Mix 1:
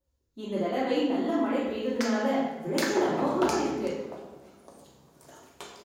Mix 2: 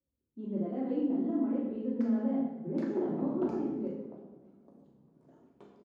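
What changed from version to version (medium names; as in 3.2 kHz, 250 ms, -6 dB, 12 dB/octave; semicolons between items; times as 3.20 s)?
master: add band-pass filter 220 Hz, Q 1.6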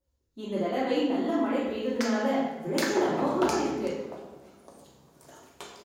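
master: remove band-pass filter 220 Hz, Q 1.6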